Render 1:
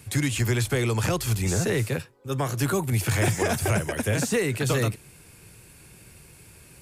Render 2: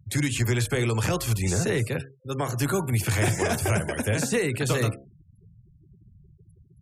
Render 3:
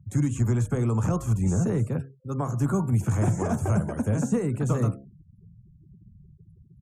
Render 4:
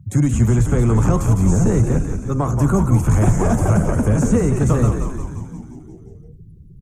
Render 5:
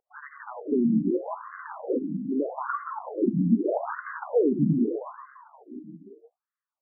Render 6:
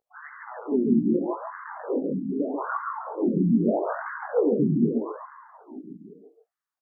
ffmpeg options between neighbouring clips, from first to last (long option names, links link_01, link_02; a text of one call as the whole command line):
ffmpeg -i in.wav -af "bandreject=frequency=67.49:width_type=h:width=4,bandreject=frequency=134.98:width_type=h:width=4,bandreject=frequency=202.47:width_type=h:width=4,bandreject=frequency=269.96:width_type=h:width=4,bandreject=frequency=337.45:width_type=h:width=4,bandreject=frequency=404.94:width_type=h:width=4,bandreject=frequency=472.43:width_type=h:width=4,bandreject=frequency=539.92:width_type=h:width=4,bandreject=frequency=607.41:width_type=h:width=4,bandreject=frequency=674.9:width_type=h:width=4,bandreject=frequency=742.39:width_type=h:width=4,bandreject=frequency=809.88:width_type=h:width=4,bandreject=frequency=877.37:width_type=h:width=4,bandreject=frequency=944.86:width_type=h:width=4,bandreject=frequency=1012.35:width_type=h:width=4,bandreject=frequency=1079.84:width_type=h:width=4,bandreject=frequency=1147.33:width_type=h:width=4,bandreject=frequency=1214.82:width_type=h:width=4,bandreject=frequency=1282.31:width_type=h:width=4,bandreject=frequency=1349.8:width_type=h:width=4,bandreject=frequency=1417.29:width_type=h:width=4,bandreject=frequency=1484.78:width_type=h:width=4,bandreject=frequency=1552.27:width_type=h:width=4,bandreject=frequency=1619.76:width_type=h:width=4,bandreject=frequency=1687.25:width_type=h:width=4,bandreject=frequency=1754.74:width_type=h:width=4,afftfilt=real='re*gte(hypot(re,im),0.01)':imag='im*gte(hypot(re,im),0.01)':win_size=1024:overlap=0.75" out.wav
ffmpeg -i in.wav -af "firequalizer=gain_entry='entry(110,0);entry(200,5);entry(370,-5);entry(1200,-2);entry(1800,-17);entry(4500,-26);entry(6500,-7);entry(11000,-18)':delay=0.05:min_phase=1,volume=1dB" out.wav
ffmpeg -i in.wav -filter_complex "[0:a]asplit=2[link_01][link_02];[link_02]asoftclip=type=tanh:threshold=-30dB,volume=-10dB[link_03];[link_01][link_03]amix=inputs=2:normalize=0,asplit=9[link_04][link_05][link_06][link_07][link_08][link_09][link_10][link_11][link_12];[link_05]adelay=176,afreqshift=-73,volume=-6dB[link_13];[link_06]adelay=352,afreqshift=-146,volume=-10.3dB[link_14];[link_07]adelay=528,afreqshift=-219,volume=-14.6dB[link_15];[link_08]adelay=704,afreqshift=-292,volume=-18.9dB[link_16];[link_09]adelay=880,afreqshift=-365,volume=-23.2dB[link_17];[link_10]adelay=1056,afreqshift=-438,volume=-27.5dB[link_18];[link_11]adelay=1232,afreqshift=-511,volume=-31.8dB[link_19];[link_12]adelay=1408,afreqshift=-584,volume=-36.1dB[link_20];[link_04][link_13][link_14][link_15][link_16][link_17][link_18][link_19][link_20]amix=inputs=9:normalize=0,volume=7dB" out.wav
ffmpeg -i in.wav -af "afftfilt=real='re*between(b*sr/1024,220*pow(1500/220,0.5+0.5*sin(2*PI*0.8*pts/sr))/1.41,220*pow(1500/220,0.5+0.5*sin(2*PI*0.8*pts/sr))*1.41)':imag='im*between(b*sr/1024,220*pow(1500/220,0.5+0.5*sin(2*PI*0.8*pts/sr))/1.41,220*pow(1500/220,0.5+0.5*sin(2*PI*0.8*pts/sr))*1.41)':win_size=1024:overlap=0.75" out.wav
ffmpeg -i in.wav -af "flanger=delay=17:depth=6.1:speed=2.9,aecho=1:1:139:0.596,volume=3dB" out.wav